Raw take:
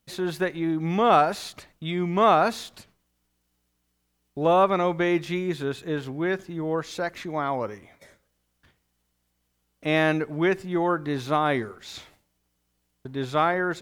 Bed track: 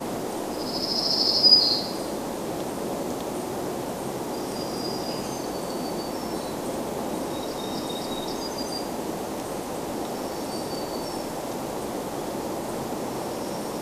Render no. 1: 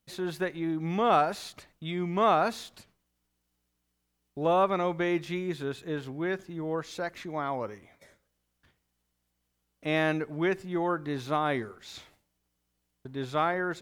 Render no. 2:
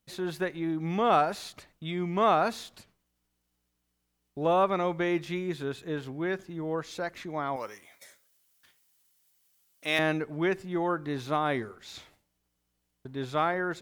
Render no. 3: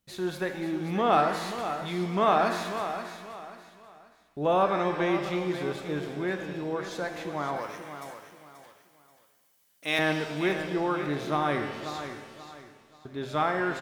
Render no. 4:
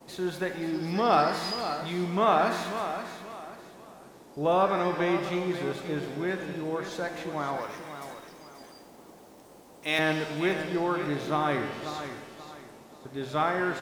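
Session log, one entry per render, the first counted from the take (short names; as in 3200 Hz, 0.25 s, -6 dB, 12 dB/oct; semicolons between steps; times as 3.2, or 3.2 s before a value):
gain -5 dB
7.56–9.99 tilt +4 dB/oct
feedback echo 0.533 s, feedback 31%, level -10 dB; shimmer reverb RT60 1.3 s, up +7 st, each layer -8 dB, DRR 6 dB
add bed track -21 dB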